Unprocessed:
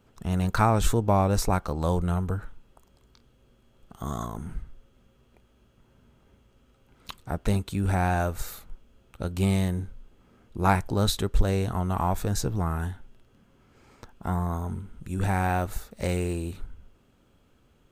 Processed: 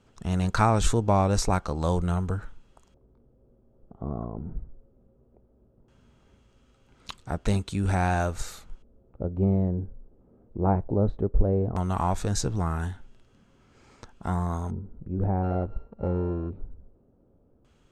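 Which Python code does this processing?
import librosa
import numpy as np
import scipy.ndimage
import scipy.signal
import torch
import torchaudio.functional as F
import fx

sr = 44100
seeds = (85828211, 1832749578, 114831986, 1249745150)

y = fx.sample_sort(x, sr, block=32, at=(15.42, 16.49), fade=0.02)
y = fx.filter_lfo_lowpass(y, sr, shape='square', hz=0.17, low_hz=560.0, high_hz=7300.0, q=1.3)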